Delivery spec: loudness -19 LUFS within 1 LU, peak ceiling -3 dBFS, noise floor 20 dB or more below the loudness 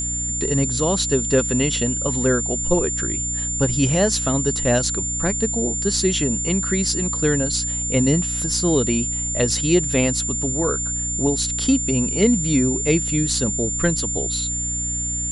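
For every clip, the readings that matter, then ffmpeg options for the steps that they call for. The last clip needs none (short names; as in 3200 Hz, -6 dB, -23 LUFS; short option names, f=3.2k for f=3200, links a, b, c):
hum 60 Hz; harmonics up to 300 Hz; hum level -28 dBFS; steady tone 7200 Hz; tone level -23 dBFS; loudness -19.5 LUFS; peak -4.0 dBFS; loudness target -19.0 LUFS
-> -af "bandreject=f=60:t=h:w=6,bandreject=f=120:t=h:w=6,bandreject=f=180:t=h:w=6,bandreject=f=240:t=h:w=6,bandreject=f=300:t=h:w=6"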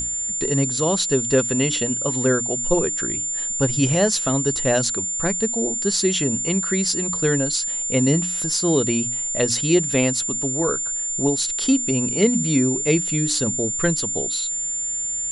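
hum none; steady tone 7200 Hz; tone level -23 dBFS
-> -af "bandreject=f=7.2k:w=30"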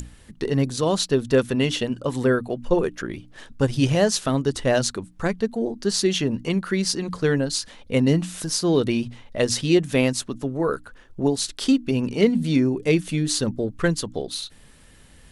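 steady tone none; loudness -23.0 LUFS; peak -4.5 dBFS; loudness target -19.0 LUFS
-> -af "volume=4dB,alimiter=limit=-3dB:level=0:latency=1"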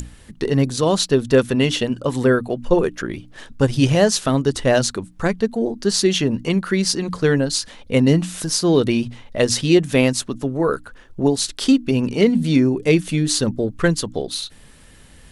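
loudness -19.0 LUFS; peak -3.0 dBFS; noise floor -46 dBFS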